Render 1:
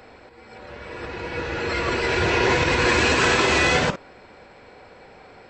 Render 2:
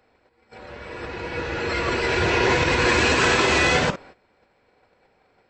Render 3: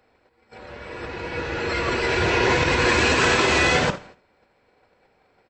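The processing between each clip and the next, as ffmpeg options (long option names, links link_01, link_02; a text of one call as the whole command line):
ffmpeg -i in.wav -af "agate=range=-16dB:threshold=-43dB:ratio=16:detection=peak" out.wav
ffmpeg -i in.wav -af "aecho=1:1:81|162|243:0.112|0.0426|0.0162" out.wav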